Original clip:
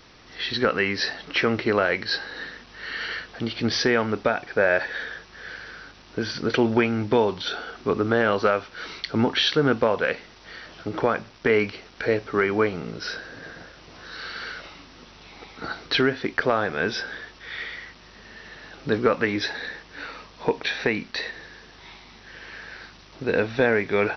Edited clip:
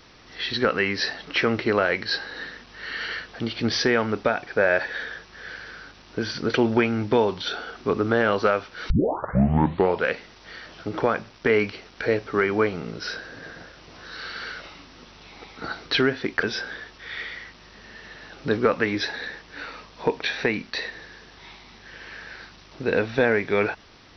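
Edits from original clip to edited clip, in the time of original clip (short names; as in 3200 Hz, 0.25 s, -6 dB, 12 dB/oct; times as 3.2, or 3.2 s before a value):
8.9 tape start 1.15 s
16.43–16.84 cut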